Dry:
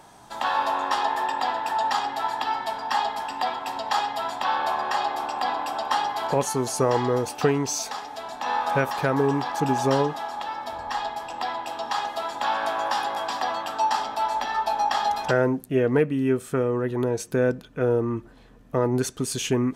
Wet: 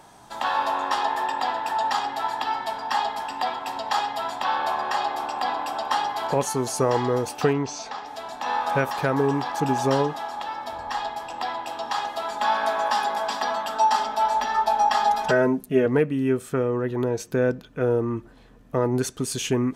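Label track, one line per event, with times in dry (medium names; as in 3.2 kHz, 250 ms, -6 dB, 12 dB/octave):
7.530000	8.060000	distance through air 130 m
12.270000	15.860000	comb 4.7 ms, depth 64%
16.490000	17.680000	peaking EQ 9.4 kHz -7 dB 0.47 oct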